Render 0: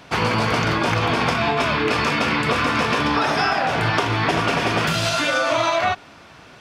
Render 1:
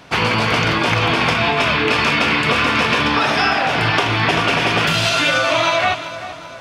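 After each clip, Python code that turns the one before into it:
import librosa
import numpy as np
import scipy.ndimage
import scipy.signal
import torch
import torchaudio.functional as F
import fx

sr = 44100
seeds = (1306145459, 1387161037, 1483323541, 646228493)

y = fx.echo_feedback(x, sr, ms=388, feedback_pct=56, wet_db=-13.0)
y = fx.dynamic_eq(y, sr, hz=2800.0, q=1.2, threshold_db=-37.0, ratio=4.0, max_db=6)
y = y * 10.0 ** (1.5 / 20.0)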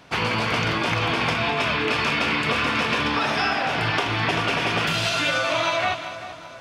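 y = x + 10.0 ** (-14.5 / 20.0) * np.pad(x, (int(205 * sr / 1000.0), 0))[:len(x)]
y = y * 10.0 ** (-6.5 / 20.0)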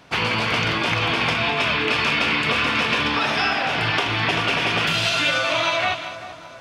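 y = fx.dynamic_eq(x, sr, hz=3000.0, q=0.98, threshold_db=-36.0, ratio=4.0, max_db=4)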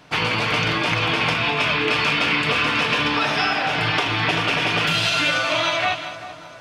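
y = x + 0.35 * np.pad(x, (int(6.6 * sr / 1000.0), 0))[:len(x)]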